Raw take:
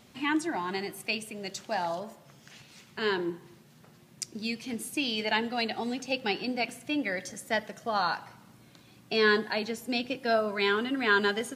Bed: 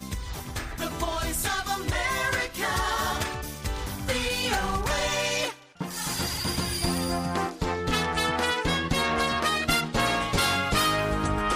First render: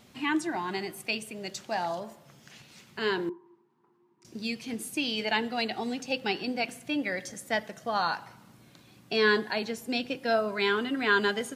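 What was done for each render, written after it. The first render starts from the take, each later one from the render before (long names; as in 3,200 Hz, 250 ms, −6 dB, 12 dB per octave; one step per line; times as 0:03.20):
0:03.29–0:04.25: pair of resonant band-passes 590 Hz, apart 1.4 octaves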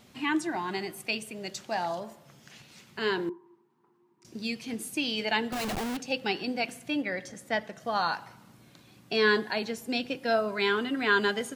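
0:05.52–0:05.97: comparator with hysteresis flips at −38 dBFS
0:07.01–0:07.79: high-shelf EQ 4,700 Hz → 7,600 Hz −9.5 dB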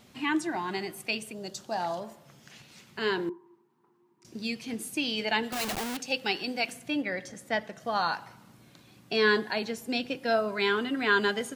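0:01.32–0:01.80: parametric band 2,200 Hz −12 dB 0.73 octaves
0:05.43–0:06.73: spectral tilt +1.5 dB per octave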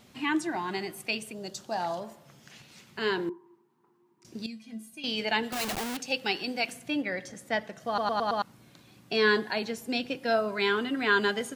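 0:04.46–0:05.04: tuned comb filter 220 Hz, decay 0.17 s, harmonics odd, mix 90%
0:07.87: stutter in place 0.11 s, 5 plays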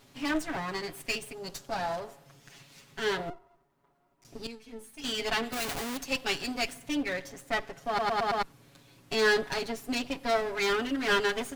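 lower of the sound and its delayed copy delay 7.2 ms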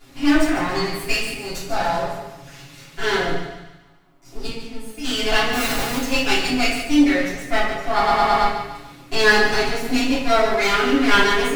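on a send: feedback echo with a high-pass in the loop 145 ms, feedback 46%, high-pass 570 Hz, level −9.5 dB
on the sum: rectangular room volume 150 cubic metres, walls mixed, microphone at 3.2 metres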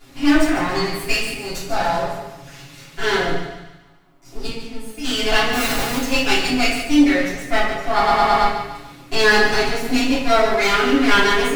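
level +1.5 dB
brickwall limiter −3 dBFS, peak gain reduction 2.5 dB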